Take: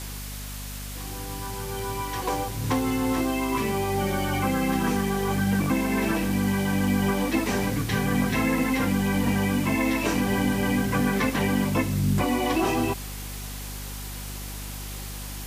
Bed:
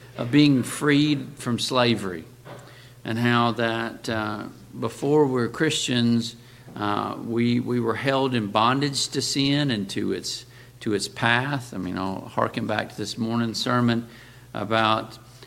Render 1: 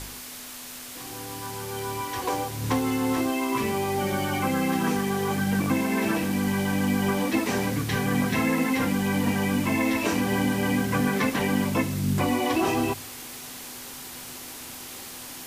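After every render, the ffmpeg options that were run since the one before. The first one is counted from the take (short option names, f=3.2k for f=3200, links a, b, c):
-af "bandreject=f=50:t=h:w=4,bandreject=f=100:t=h:w=4,bandreject=f=150:t=h:w=4,bandreject=f=200:t=h:w=4"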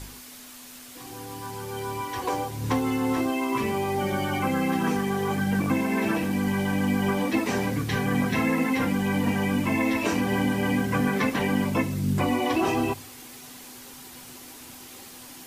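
-af "afftdn=nr=6:nf=-40"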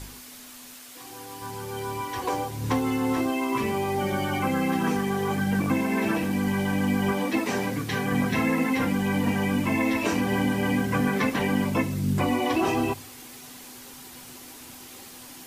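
-filter_complex "[0:a]asettb=1/sr,asplit=3[a][b][c];[a]atrim=end=0.744[d];[b]atrim=start=0.74:end=1.42,asetpts=PTS-STARTPTS,afade=t=in:d=0.004:c=qsin,afade=t=out:st=0.676:d=0.004:c=qsin,lowshelf=f=260:g=-10[e];[c]atrim=start=1.416[f];[d][e]acrossfade=d=0.004:c1=hsin:c2=qsin[g];[g][f]acrossfade=d=0.004:c1=qsin:c2=hsin,asettb=1/sr,asplit=3[h][i][j];[h]atrim=end=7.124[k];[i]atrim=start=7.12:end=8.12,asetpts=PTS-STARTPTS,afade=t=in:d=0.004:c=qsin,afade=t=out:st=0.996:d=0.004:c=qsin,highpass=f=150:p=1[l];[j]atrim=start=8.116[m];[k][l]acrossfade=d=0.004:c1=hsin:c2=qsin[n];[n][m]acrossfade=d=0.004:c1=qsin:c2=hsin"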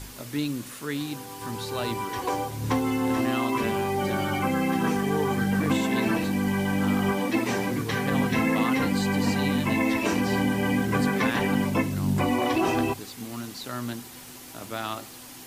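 -filter_complex "[1:a]volume=-12dB[a];[0:a][a]amix=inputs=2:normalize=0"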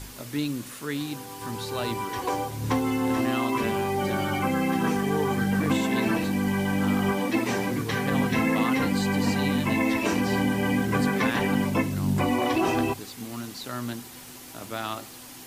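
-af anull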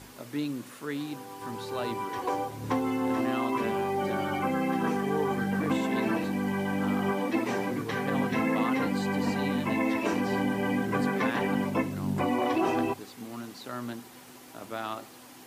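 -af "highpass=f=270:p=1,highshelf=f=2.1k:g=-9.5"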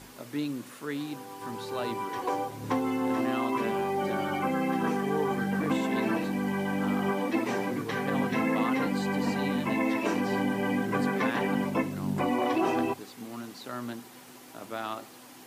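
-af "equalizer=f=83:t=o:w=0.37:g=-12.5"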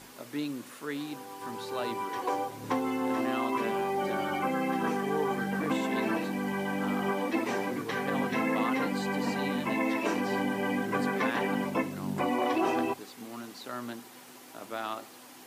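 -af "lowshelf=f=150:g=-9.5"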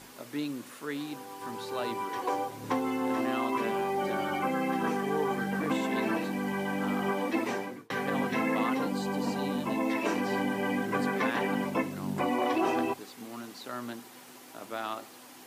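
-filter_complex "[0:a]asettb=1/sr,asplit=3[a][b][c];[a]atrim=end=8.744[d];[b]atrim=start=8.74:end=9.9,asetpts=PTS-STARTPTS,afade=t=in:d=0.004:c=qsin,afade=t=out:st=1.156:d=0.004:c=qsin,equalizer=f=2k:w=1.8:g=-9[e];[c]atrim=start=9.896[f];[d][e]acrossfade=d=0.004:c1=hsin:c2=qsin[g];[g][f]acrossfade=d=0.004:c1=qsin:c2=hsin,asplit=2[h][i];[h]atrim=end=7.9,asetpts=PTS-STARTPTS,afade=t=out:st=7.47:d=0.43[j];[i]atrim=start=7.9,asetpts=PTS-STARTPTS,afade=t=in:d=0.004:c=hsin[k];[j][k]concat=n=2:v=0:a=1"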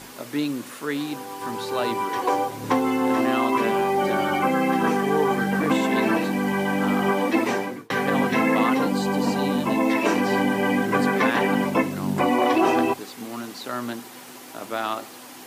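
-af "volume=8.5dB"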